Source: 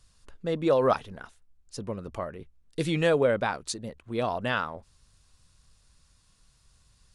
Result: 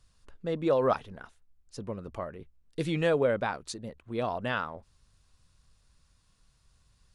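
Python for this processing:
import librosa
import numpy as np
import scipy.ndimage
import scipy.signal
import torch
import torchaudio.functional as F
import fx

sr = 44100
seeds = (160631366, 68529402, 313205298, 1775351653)

y = fx.high_shelf(x, sr, hz=4200.0, db=-5.5)
y = y * 10.0 ** (-2.5 / 20.0)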